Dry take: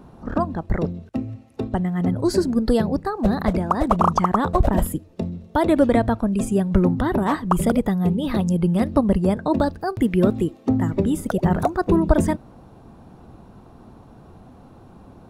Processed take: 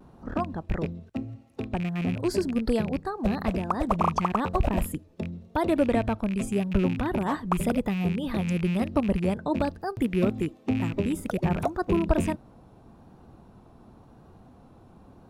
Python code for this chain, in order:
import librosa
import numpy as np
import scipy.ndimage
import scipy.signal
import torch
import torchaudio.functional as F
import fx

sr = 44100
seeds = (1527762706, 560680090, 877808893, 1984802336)

y = fx.rattle_buzz(x, sr, strikes_db=-22.0, level_db=-22.0)
y = fx.vibrato(y, sr, rate_hz=0.93, depth_cents=45.0)
y = y * librosa.db_to_amplitude(-6.5)